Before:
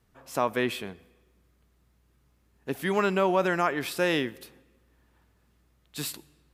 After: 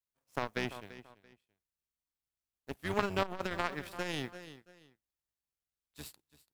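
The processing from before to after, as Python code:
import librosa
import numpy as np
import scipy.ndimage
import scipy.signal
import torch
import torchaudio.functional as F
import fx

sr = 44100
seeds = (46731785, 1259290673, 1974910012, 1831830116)

p1 = fx.octave_divider(x, sr, octaves=1, level_db=-3.0)
p2 = fx.dmg_noise_colour(p1, sr, seeds[0], colour='white', level_db=-58.0)
p3 = fx.power_curve(p2, sr, exponent=2.0)
p4 = p3 + fx.echo_feedback(p3, sr, ms=337, feedback_pct=26, wet_db=-18.5, dry=0)
p5 = fx.transformer_sat(p4, sr, knee_hz=640.0)
y = F.gain(torch.from_numpy(p5), 1.5).numpy()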